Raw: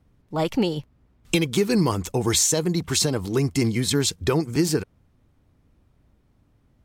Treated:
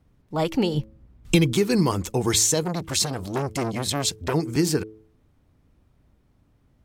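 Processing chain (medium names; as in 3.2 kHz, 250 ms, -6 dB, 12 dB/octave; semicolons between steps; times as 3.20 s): 0.74–1.53 s: bass shelf 200 Hz +10.5 dB; de-hum 108.6 Hz, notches 5; 2.63–4.34 s: transformer saturation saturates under 1.1 kHz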